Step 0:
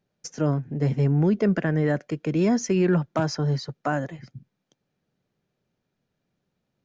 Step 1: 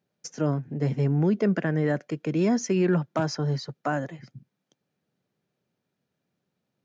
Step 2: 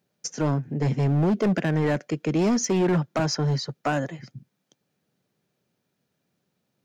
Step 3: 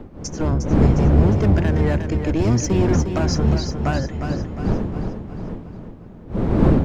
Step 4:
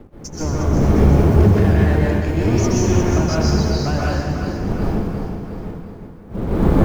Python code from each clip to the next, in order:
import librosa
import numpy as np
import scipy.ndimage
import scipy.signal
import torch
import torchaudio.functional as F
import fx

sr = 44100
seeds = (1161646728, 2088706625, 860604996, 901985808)

y1 = scipy.signal.sosfilt(scipy.signal.butter(2, 110.0, 'highpass', fs=sr, output='sos'), x)
y1 = y1 * 10.0 ** (-1.5 / 20.0)
y2 = fx.high_shelf(y1, sr, hz=4700.0, db=5.5)
y2 = np.clip(y2, -10.0 ** (-21.5 / 20.0), 10.0 ** (-21.5 / 20.0))
y2 = y2 * 10.0 ** (3.5 / 20.0)
y3 = fx.octave_divider(y2, sr, octaves=1, level_db=4.0)
y3 = fx.dmg_wind(y3, sr, seeds[0], corner_hz=250.0, level_db=-23.0)
y3 = fx.echo_feedback(y3, sr, ms=357, feedback_pct=50, wet_db=-7.5)
y4 = fx.law_mismatch(y3, sr, coded='A')
y4 = fx.rev_plate(y4, sr, seeds[1], rt60_s=1.1, hf_ratio=0.85, predelay_ms=115, drr_db=-5.5)
y4 = y4 * 10.0 ** (-2.5 / 20.0)